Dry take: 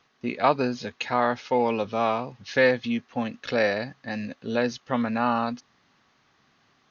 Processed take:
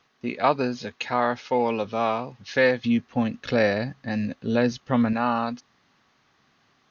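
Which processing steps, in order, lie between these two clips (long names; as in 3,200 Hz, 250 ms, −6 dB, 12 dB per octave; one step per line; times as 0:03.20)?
0:02.84–0:05.13: low-shelf EQ 240 Hz +10.5 dB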